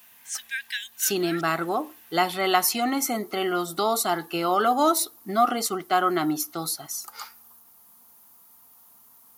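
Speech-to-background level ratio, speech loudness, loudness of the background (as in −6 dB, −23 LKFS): 10.0 dB, −24.5 LKFS, −34.5 LKFS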